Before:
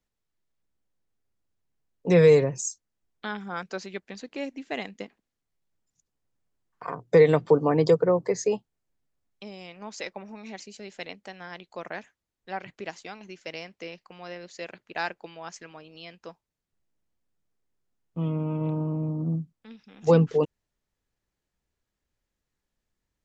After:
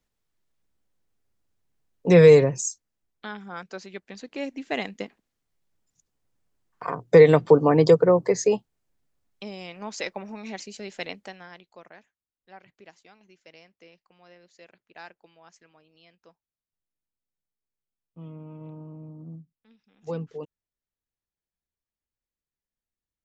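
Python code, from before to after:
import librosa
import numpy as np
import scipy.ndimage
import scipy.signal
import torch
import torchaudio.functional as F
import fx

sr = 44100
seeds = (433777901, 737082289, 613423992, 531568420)

y = fx.gain(x, sr, db=fx.line((2.46, 4.0), (3.34, -3.5), (3.84, -3.5), (4.73, 4.0), (11.21, 4.0), (11.44, -3.5), (11.96, -13.5)))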